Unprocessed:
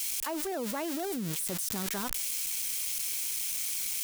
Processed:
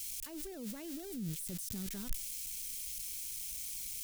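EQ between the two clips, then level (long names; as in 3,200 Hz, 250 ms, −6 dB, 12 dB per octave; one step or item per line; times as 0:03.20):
guitar amp tone stack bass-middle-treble 10-0-1
+11.5 dB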